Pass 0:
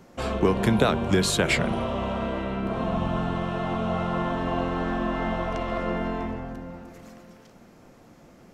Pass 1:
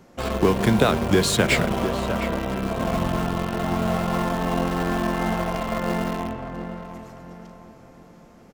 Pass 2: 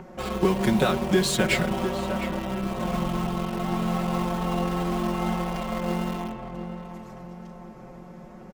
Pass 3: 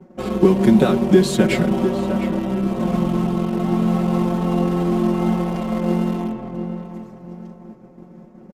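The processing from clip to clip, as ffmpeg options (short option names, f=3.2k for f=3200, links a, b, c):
-filter_complex "[0:a]asplit=2[a][b];[b]acrusher=bits=3:mix=0:aa=0.000001,volume=-9.5dB[c];[a][c]amix=inputs=2:normalize=0,asplit=2[d][e];[e]adelay=704,lowpass=f=2.1k:p=1,volume=-9.5dB,asplit=2[f][g];[g]adelay=704,lowpass=f=2.1k:p=1,volume=0.4,asplit=2[h][i];[i]adelay=704,lowpass=f=2.1k:p=1,volume=0.4,asplit=2[j][k];[k]adelay=704,lowpass=f=2.1k:p=1,volume=0.4[l];[d][f][h][j][l]amix=inputs=5:normalize=0"
-filter_complex "[0:a]aecho=1:1:5.4:0.92,acrossover=split=2200[a][b];[a]acompressor=mode=upward:threshold=-28dB:ratio=2.5[c];[c][b]amix=inputs=2:normalize=0,volume=-6dB"
-af "aresample=32000,aresample=44100,equalizer=f=270:w=0.71:g=12.5,agate=range=-33dB:threshold=-28dB:ratio=3:detection=peak,volume=-1dB"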